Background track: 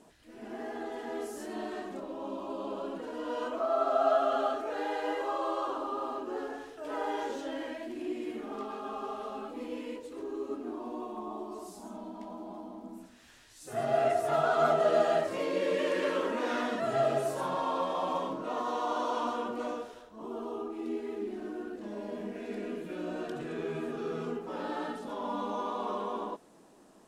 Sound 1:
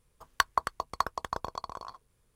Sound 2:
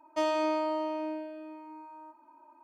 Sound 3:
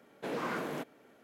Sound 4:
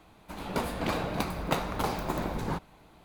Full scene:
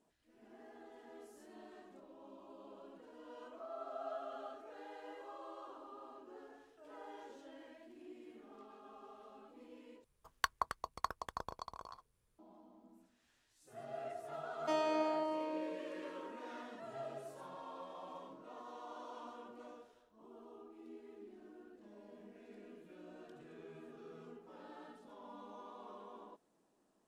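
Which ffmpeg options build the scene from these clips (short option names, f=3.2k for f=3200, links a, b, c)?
-filter_complex "[0:a]volume=-18dB[a];[2:a]aresample=32000,aresample=44100[b];[a]asplit=2[c][d];[c]atrim=end=10.044[e];[1:a]atrim=end=2.35,asetpts=PTS-STARTPTS,volume=-9dB[f];[d]atrim=start=12.386[g];[b]atrim=end=2.63,asetpts=PTS-STARTPTS,volume=-6.5dB,afade=t=in:d=0.004:c=hsin,afade=t=out:st=2.626:d=0.004:c=hsin,adelay=14510[h];[e][f]acrossfade=d=0.004:c1=hsin:c2=hsin[i];[i][g]acrossfade=d=0.004:c1=hsin:c2=hsin[j];[j][h]amix=inputs=2:normalize=0"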